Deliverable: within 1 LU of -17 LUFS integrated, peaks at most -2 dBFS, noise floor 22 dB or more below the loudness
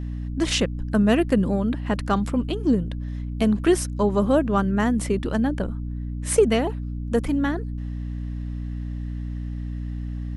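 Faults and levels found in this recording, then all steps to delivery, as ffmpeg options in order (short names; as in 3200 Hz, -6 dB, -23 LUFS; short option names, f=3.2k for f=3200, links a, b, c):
hum 60 Hz; harmonics up to 300 Hz; hum level -27 dBFS; loudness -24.0 LUFS; peak -5.5 dBFS; loudness target -17.0 LUFS
-> -af "bandreject=f=60:t=h:w=6,bandreject=f=120:t=h:w=6,bandreject=f=180:t=h:w=6,bandreject=f=240:t=h:w=6,bandreject=f=300:t=h:w=6"
-af "volume=7dB,alimiter=limit=-2dB:level=0:latency=1"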